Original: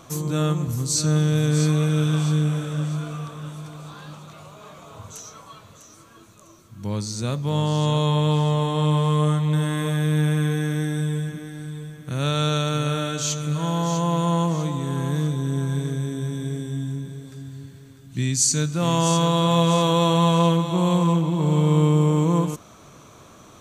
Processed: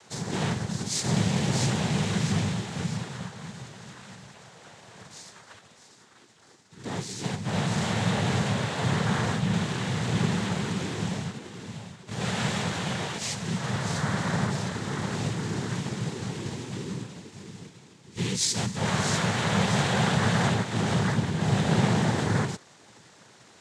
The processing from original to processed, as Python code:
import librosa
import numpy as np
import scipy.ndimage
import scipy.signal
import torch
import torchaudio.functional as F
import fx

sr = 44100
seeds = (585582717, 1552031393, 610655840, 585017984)

y = fx.envelope_flatten(x, sr, power=0.6)
y = fx.noise_vocoder(y, sr, seeds[0], bands=6)
y = y * librosa.db_to_amplitude(-5.5)